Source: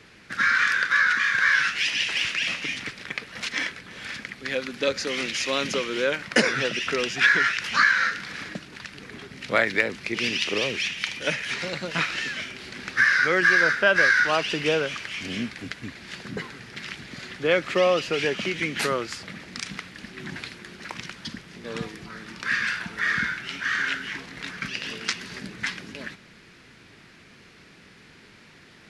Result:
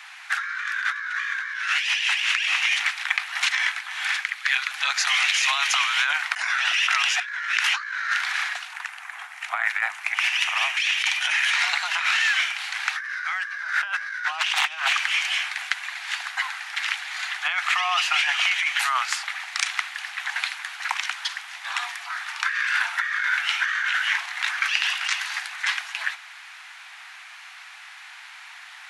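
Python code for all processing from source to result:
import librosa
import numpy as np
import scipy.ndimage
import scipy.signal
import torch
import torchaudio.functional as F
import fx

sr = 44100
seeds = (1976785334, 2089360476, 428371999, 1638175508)

y = fx.chain(x, sr, fx.highpass(hz=1200.0, slope=12),
    fx.high_shelf(hz=3500.0, db=-3.0), at=(4.21, 4.71))
y = fx.chain(y, sr, fx.peak_eq(hz=4100.0, db=-11.5, octaves=1.4),
    fx.doppler_dist(depth_ms=0.1), at=(8.73, 10.77))
y = fx.chain(y, sr, fx.over_compress(threshold_db=-29.0, ratio=-0.5),
    fx.doppler_dist(depth_ms=0.79), at=(14.25, 14.93))
y = scipy.signal.sosfilt(scipy.signal.butter(16, 730.0, 'highpass', fs=sr, output='sos'), y)
y = fx.peak_eq(y, sr, hz=4900.0, db=-6.0, octaves=0.47)
y = fx.over_compress(y, sr, threshold_db=-31.0, ratio=-1.0)
y = y * 10.0 ** (6.5 / 20.0)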